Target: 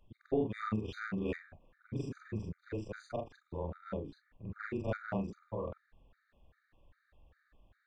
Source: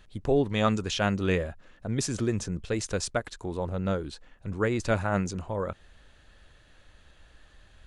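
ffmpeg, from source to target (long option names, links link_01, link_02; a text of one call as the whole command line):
ffmpeg -i in.wav -af "afftfilt=real='re':imag='-im':win_size=4096:overlap=0.75,adynamicsmooth=sensitivity=1:basefreq=2100,afftfilt=real='re*gt(sin(2*PI*2.5*pts/sr)*(1-2*mod(floor(b*sr/1024/1200),2)),0)':imag='im*gt(sin(2*PI*2.5*pts/sr)*(1-2*mod(floor(b*sr/1024/1200),2)),0)':win_size=1024:overlap=0.75,volume=-2.5dB" out.wav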